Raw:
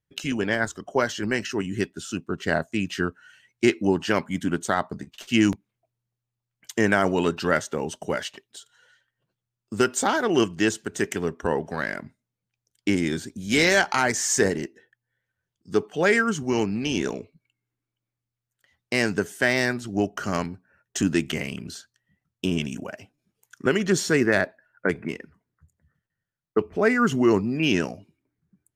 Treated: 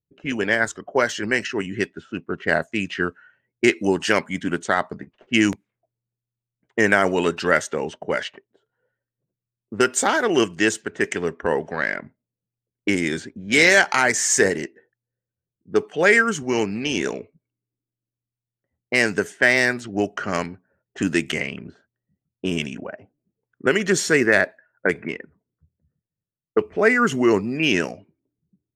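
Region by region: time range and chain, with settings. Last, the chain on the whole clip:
3.76–4.19 s: low-pass 12 kHz 24 dB/octave + treble shelf 4.4 kHz +7 dB
whole clip: bass shelf 110 Hz -5 dB; level-controlled noise filter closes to 340 Hz, open at -21.5 dBFS; graphic EQ 500/2000/8000 Hz +4/+7/+5 dB

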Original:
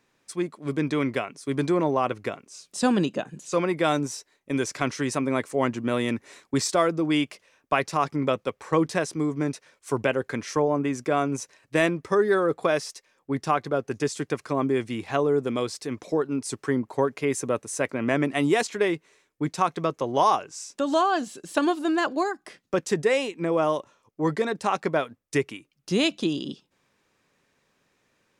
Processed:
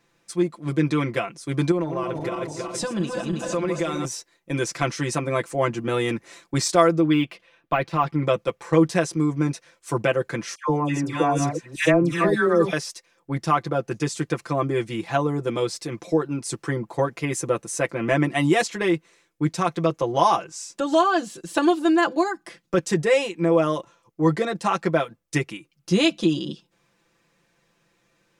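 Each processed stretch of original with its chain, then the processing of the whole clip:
1.71–4.05 s: backward echo that repeats 161 ms, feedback 67%, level -6 dB + compression 4:1, threshold -26 dBFS
7.00–8.24 s: de-esser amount 95% + resonant high shelf 4.6 kHz -8.5 dB, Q 1.5
10.55–12.73 s: chunks repeated in reverse 359 ms, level -7 dB + phase dispersion lows, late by 131 ms, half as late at 1.4 kHz
whole clip: bass shelf 110 Hz +5.5 dB; comb 5.9 ms, depth 92%

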